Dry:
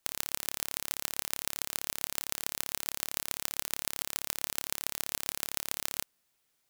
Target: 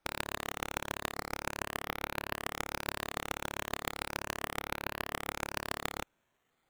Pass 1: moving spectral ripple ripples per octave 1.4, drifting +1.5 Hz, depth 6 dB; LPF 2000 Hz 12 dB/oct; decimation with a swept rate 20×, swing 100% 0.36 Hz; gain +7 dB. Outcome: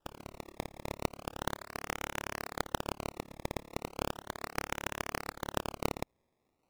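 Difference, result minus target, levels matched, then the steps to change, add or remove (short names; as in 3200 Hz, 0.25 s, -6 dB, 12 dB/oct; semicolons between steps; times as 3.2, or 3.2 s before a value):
decimation with a swept rate: distortion +12 dB
change: decimation with a swept rate 6×, swing 100% 0.36 Hz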